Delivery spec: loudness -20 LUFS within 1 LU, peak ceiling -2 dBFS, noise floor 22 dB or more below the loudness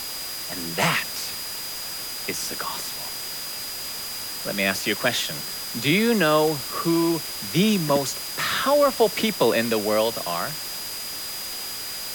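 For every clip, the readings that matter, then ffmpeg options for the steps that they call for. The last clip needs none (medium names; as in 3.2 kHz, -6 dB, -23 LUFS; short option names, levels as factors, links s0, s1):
steady tone 4.9 kHz; tone level -34 dBFS; noise floor -33 dBFS; noise floor target -46 dBFS; loudness -24.0 LUFS; peak level -6.5 dBFS; loudness target -20.0 LUFS
-> -af "bandreject=f=4900:w=30"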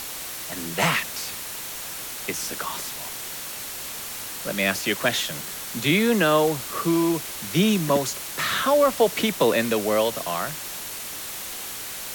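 steady tone not found; noise floor -34 dBFS; noise floor target -47 dBFS
-> -af "afftdn=nr=13:nf=-34"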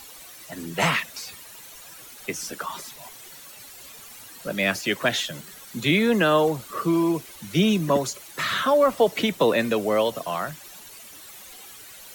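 noise floor -44 dBFS; noise floor target -46 dBFS
-> -af "afftdn=nr=6:nf=-44"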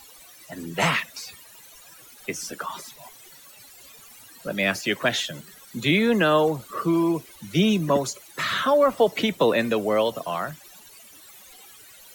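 noise floor -49 dBFS; loudness -23.5 LUFS; peak level -7.0 dBFS; loudness target -20.0 LUFS
-> -af "volume=1.5"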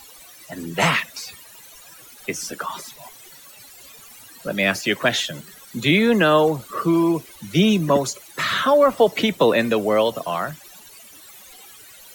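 loudness -20.0 LUFS; peak level -3.5 dBFS; noise floor -45 dBFS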